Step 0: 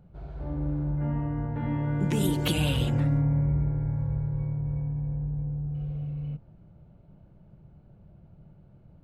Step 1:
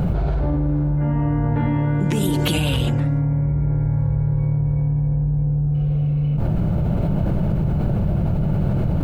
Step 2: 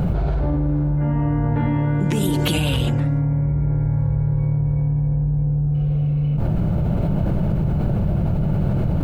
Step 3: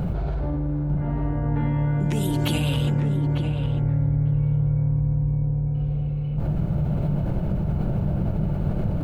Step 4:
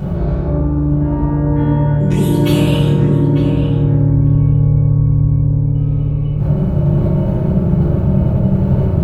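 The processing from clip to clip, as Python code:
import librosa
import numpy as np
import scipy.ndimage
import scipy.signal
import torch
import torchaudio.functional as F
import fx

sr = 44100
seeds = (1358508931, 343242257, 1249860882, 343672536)

y1 = fx.env_flatten(x, sr, amount_pct=100)
y1 = y1 * 10.0 ** (3.5 / 20.0)
y2 = y1
y3 = fx.echo_filtered(y2, sr, ms=899, feedback_pct=17, hz=1400.0, wet_db=-4)
y3 = y3 * 10.0 ** (-5.5 / 20.0)
y4 = fx.rev_fdn(y3, sr, rt60_s=1.7, lf_ratio=1.5, hf_ratio=0.35, size_ms=16.0, drr_db=-9.5)
y4 = y4 * 10.0 ** (-1.5 / 20.0)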